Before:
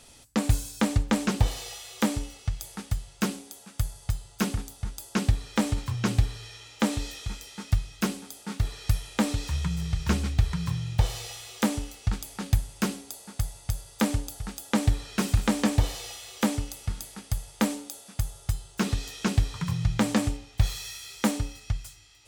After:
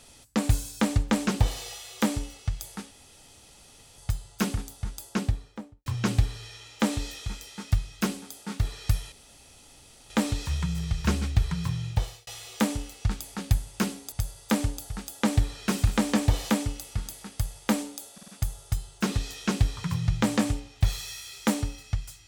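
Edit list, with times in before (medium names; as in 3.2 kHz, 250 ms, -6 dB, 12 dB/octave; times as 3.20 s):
2.91–3.98 s: room tone
4.95–5.86 s: studio fade out
9.12 s: insert room tone 0.98 s
10.88–11.29 s: fade out
13.14–13.62 s: delete
16.00–16.42 s: delete
18.05 s: stutter 0.05 s, 4 plays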